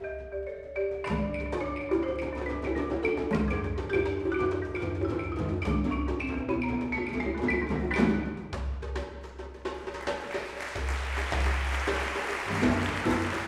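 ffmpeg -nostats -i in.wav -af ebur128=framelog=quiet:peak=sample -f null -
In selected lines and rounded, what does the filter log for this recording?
Integrated loudness:
  I:         -30.5 LUFS
  Threshold: -40.5 LUFS
Loudness range:
  LRA:         3.2 LU
  Threshold: -50.6 LUFS
  LRA low:   -32.6 LUFS
  LRA high:  -29.4 LUFS
Sample peak:
  Peak:      -11.9 dBFS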